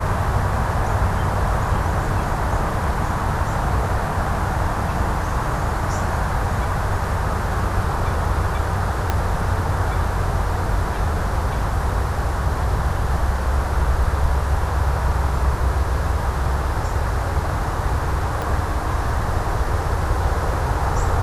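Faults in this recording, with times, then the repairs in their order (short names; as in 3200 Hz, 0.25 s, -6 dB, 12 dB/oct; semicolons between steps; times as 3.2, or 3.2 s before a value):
9.1 pop -6 dBFS
18.42 pop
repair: de-click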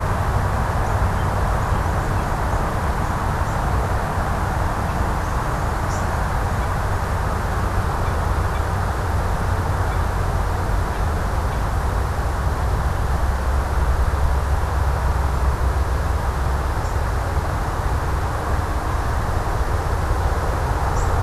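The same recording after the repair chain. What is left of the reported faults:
9.1 pop
18.42 pop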